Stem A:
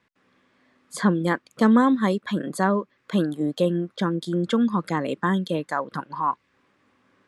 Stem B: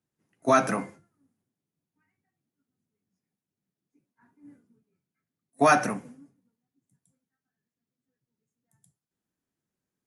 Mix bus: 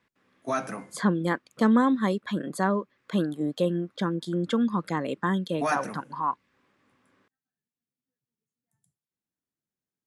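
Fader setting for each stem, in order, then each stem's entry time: -3.5 dB, -8.0 dB; 0.00 s, 0.00 s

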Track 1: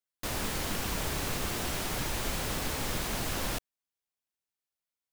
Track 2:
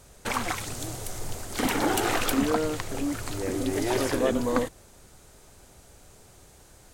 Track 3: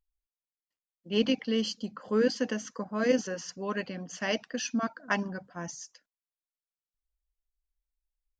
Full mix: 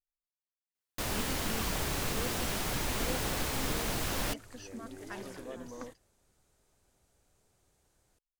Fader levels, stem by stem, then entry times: -0.5 dB, -19.0 dB, -16.0 dB; 0.75 s, 1.25 s, 0.00 s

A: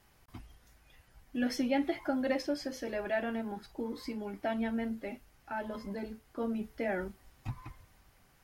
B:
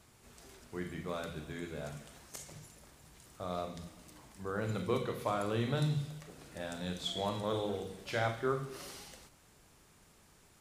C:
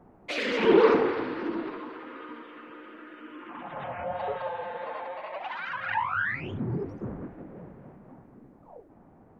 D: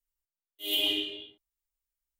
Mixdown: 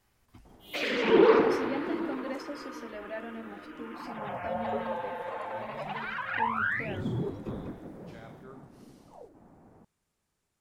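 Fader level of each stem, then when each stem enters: -6.5 dB, -17.5 dB, -1.0 dB, -18.0 dB; 0.00 s, 0.00 s, 0.45 s, 0.00 s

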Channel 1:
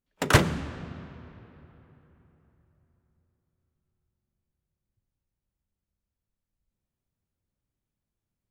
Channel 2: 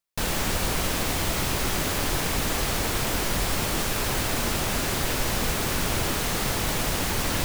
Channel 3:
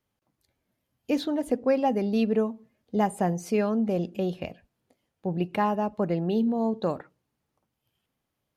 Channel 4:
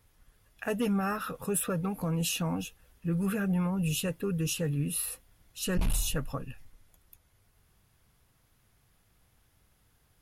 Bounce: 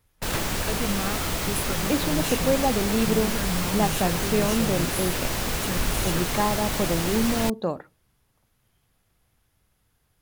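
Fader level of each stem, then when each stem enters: -12.5 dB, -1.5 dB, +0.5 dB, -1.5 dB; 0.00 s, 0.05 s, 0.80 s, 0.00 s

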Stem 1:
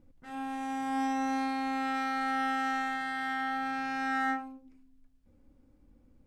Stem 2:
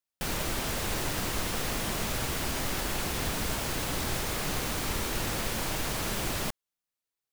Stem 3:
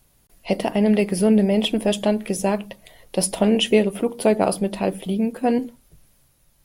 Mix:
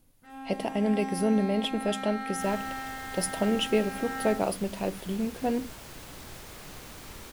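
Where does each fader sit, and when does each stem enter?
-5.0 dB, -13.0 dB, -8.5 dB; 0.00 s, 2.20 s, 0.00 s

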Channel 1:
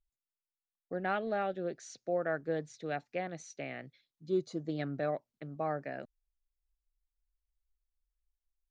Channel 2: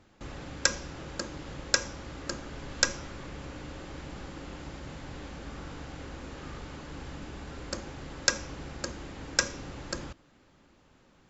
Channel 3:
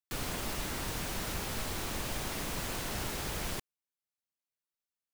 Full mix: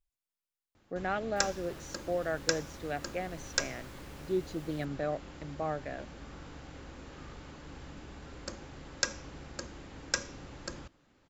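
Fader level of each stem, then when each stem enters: 0.0 dB, -5.5 dB, -19.0 dB; 0.00 s, 0.75 s, 1.25 s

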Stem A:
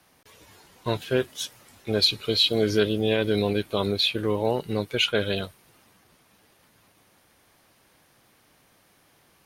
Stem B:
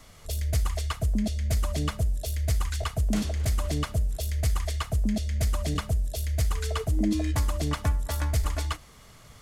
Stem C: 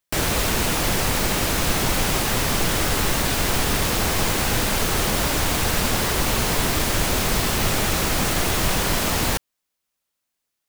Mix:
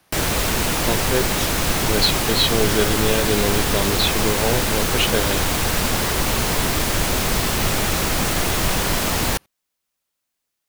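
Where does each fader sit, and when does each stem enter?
+1.5 dB, mute, +1.0 dB; 0.00 s, mute, 0.00 s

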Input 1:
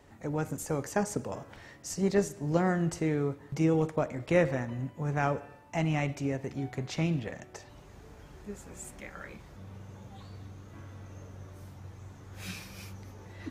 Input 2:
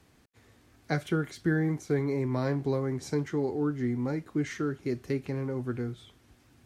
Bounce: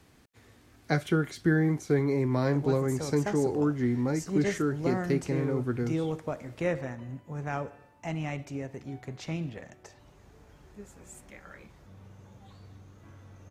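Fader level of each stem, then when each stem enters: -4.5 dB, +2.5 dB; 2.30 s, 0.00 s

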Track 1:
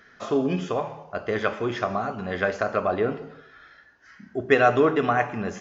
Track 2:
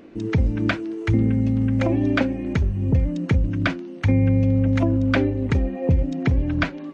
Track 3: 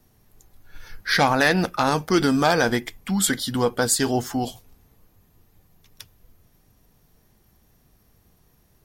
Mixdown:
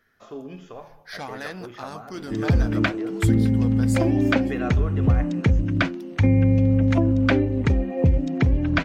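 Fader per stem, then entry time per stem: -13.5 dB, +0.5 dB, -16.5 dB; 0.00 s, 2.15 s, 0.00 s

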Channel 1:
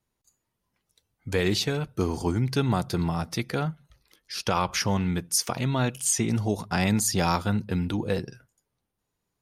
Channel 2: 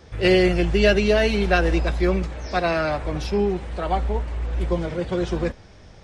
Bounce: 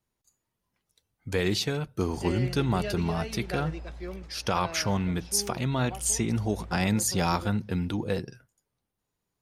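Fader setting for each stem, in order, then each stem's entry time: -2.0 dB, -17.5 dB; 0.00 s, 2.00 s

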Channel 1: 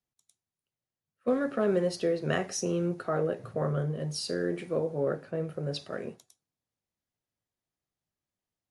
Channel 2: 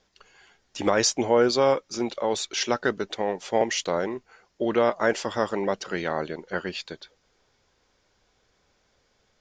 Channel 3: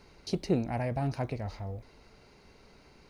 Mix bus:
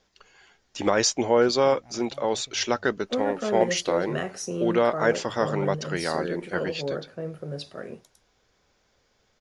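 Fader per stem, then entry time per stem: -1.0 dB, 0.0 dB, -18.5 dB; 1.85 s, 0.00 s, 1.15 s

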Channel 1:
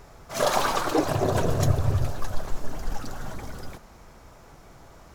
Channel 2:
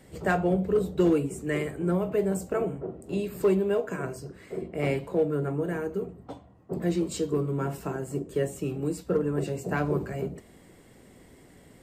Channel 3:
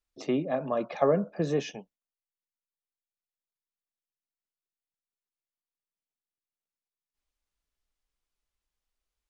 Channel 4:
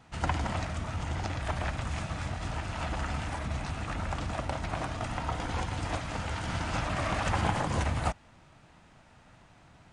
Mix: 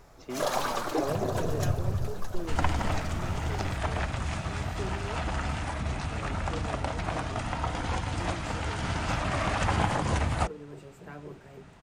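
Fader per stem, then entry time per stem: -6.0 dB, -16.5 dB, -10.5 dB, +2.0 dB; 0.00 s, 1.35 s, 0.00 s, 2.35 s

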